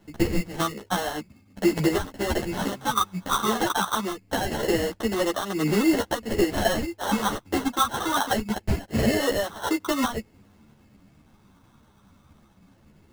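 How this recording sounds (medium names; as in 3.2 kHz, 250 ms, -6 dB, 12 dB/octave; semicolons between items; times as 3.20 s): phasing stages 8, 0.23 Hz, lowest notch 580–2000 Hz; aliases and images of a low sample rate 2.4 kHz, jitter 0%; a shimmering, thickened sound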